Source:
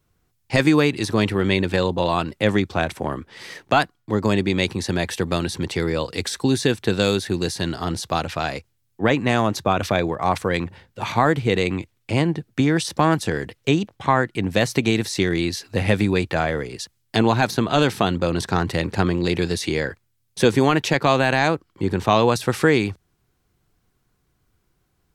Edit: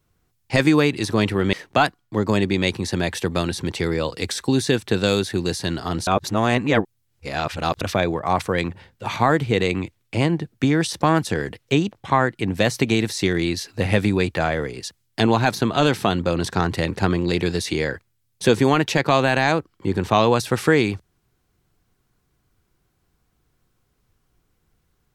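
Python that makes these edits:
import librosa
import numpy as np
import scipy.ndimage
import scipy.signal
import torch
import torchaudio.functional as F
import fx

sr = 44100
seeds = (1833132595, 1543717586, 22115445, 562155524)

y = fx.edit(x, sr, fx.cut(start_s=1.53, length_s=1.96),
    fx.reverse_span(start_s=8.03, length_s=1.74), tone=tone)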